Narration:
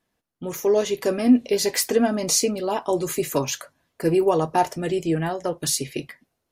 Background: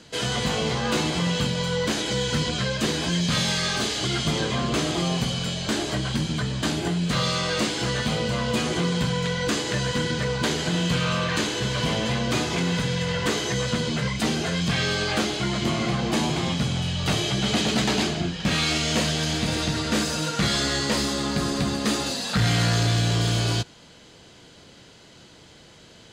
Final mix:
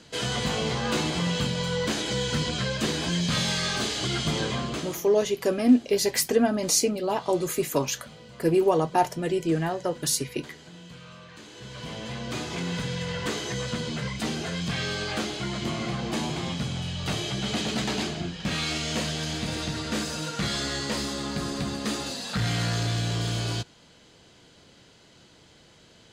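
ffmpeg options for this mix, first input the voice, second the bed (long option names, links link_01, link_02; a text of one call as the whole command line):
ffmpeg -i stem1.wav -i stem2.wav -filter_complex "[0:a]adelay=4400,volume=-2dB[link_01];[1:a]volume=14dB,afade=type=out:start_time=4.48:duration=0.55:silence=0.105925,afade=type=in:start_time=11.41:duration=1.4:silence=0.149624[link_02];[link_01][link_02]amix=inputs=2:normalize=0" out.wav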